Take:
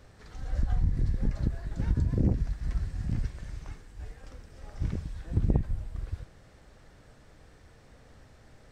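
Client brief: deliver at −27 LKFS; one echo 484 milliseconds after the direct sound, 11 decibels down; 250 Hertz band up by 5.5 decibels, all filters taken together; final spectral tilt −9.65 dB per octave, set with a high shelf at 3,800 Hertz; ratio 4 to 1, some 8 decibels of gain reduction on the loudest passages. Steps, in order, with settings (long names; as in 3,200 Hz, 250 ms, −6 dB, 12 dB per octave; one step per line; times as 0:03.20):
parametric band 250 Hz +7.5 dB
high-shelf EQ 3,800 Hz −5.5 dB
downward compressor 4 to 1, threshold −27 dBFS
single-tap delay 484 ms −11 dB
level +8.5 dB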